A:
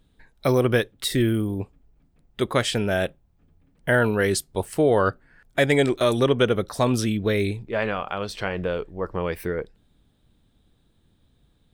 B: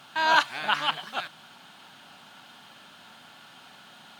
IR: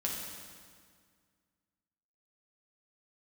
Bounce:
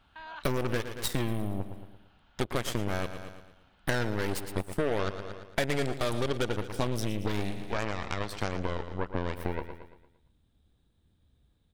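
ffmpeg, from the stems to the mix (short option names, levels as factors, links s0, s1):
-filter_complex "[0:a]equalizer=f=68:t=o:w=0.94:g=7.5,aeval=exprs='0.447*(cos(1*acos(clip(val(0)/0.447,-1,1)))-cos(1*PI/2))+0.0398*(cos(7*acos(clip(val(0)/0.447,-1,1)))-cos(7*PI/2))+0.0708*(cos(8*acos(clip(val(0)/0.447,-1,1)))-cos(8*PI/2))':c=same,volume=1,asplit=2[s0][s1];[s1]volume=0.211[s2];[1:a]lowpass=3300,acompressor=threshold=0.0355:ratio=2.5,volume=0.168[s3];[s2]aecho=0:1:114|228|342|456|570|684:1|0.44|0.194|0.0852|0.0375|0.0165[s4];[s0][s3][s4]amix=inputs=3:normalize=0,acompressor=threshold=0.0501:ratio=5"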